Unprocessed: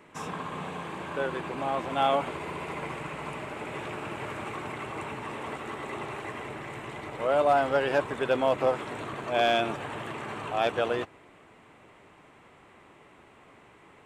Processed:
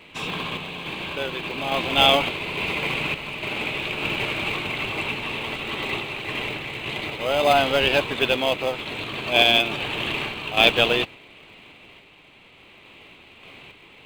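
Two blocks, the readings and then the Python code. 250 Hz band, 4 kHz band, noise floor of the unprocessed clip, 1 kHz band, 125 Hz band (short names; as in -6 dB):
+5.5 dB, +17.5 dB, -56 dBFS, +3.0 dB, +6.0 dB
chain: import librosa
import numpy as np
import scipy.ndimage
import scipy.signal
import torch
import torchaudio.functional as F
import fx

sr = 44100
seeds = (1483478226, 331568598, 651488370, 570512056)

p1 = fx.band_shelf(x, sr, hz=3200.0, db=15.5, octaves=1.2)
p2 = fx.sample_hold(p1, sr, seeds[0], rate_hz=1400.0, jitter_pct=0)
p3 = p1 + (p2 * librosa.db_to_amplitude(-11.0))
p4 = fx.tremolo_random(p3, sr, seeds[1], hz=3.5, depth_pct=55)
y = p4 * librosa.db_to_amplitude(5.0)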